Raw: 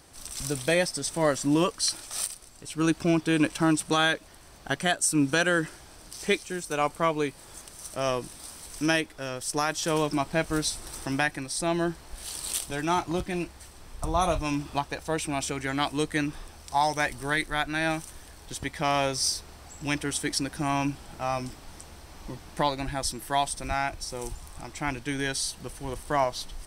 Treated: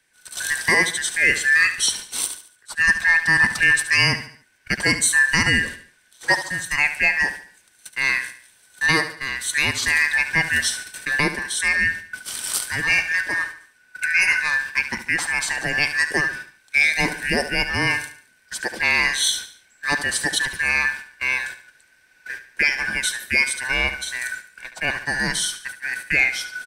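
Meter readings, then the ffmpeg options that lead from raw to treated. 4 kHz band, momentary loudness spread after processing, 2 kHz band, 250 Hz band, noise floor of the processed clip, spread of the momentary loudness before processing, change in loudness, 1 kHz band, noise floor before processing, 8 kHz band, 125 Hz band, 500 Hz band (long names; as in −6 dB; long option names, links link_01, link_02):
+7.5 dB, 13 LU, +15.0 dB, −4.5 dB, −58 dBFS, 16 LU, +8.5 dB, −2.0 dB, −49 dBFS, +6.0 dB, 0.0 dB, −4.5 dB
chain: -filter_complex "[0:a]afftfilt=real='real(if(lt(b,272),68*(eq(floor(b/68),0)*1+eq(floor(b/68),1)*0+eq(floor(b/68),2)*3+eq(floor(b/68),3)*2)+mod(b,68),b),0)':imag='imag(if(lt(b,272),68*(eq(floor(b/68),0)*1+eq(floor(b/68),1)*0+eq(floor(b/68),2)*3+eq(floor(b/68),3)*2)+mod(b,68),b),0)':win_size=2048:overlap=0.75,agate=range=-18dB:threshold=-38dB:ratio=16:detection=peak,acrossover=split=210|2600[link_01][link_02][link_03];[link_01]alimiter=level_in=6.5dB:limit=-24dB:level=0:latency=1,volume=-6.5dB[link_04];[link_04][link_02][link_03]amix=inputs=3:normalize=0,aecho=1:1:72|144|216|288:0.251|0.1|0.0402|0.0161,acontrast=64"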